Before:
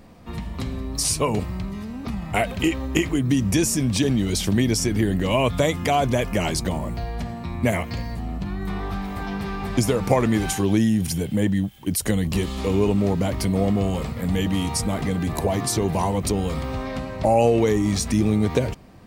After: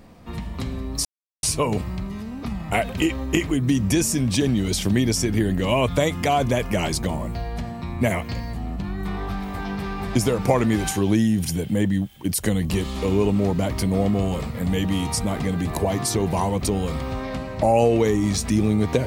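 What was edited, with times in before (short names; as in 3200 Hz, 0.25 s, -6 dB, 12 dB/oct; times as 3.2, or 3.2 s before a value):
1.05 insert silence 0.38 s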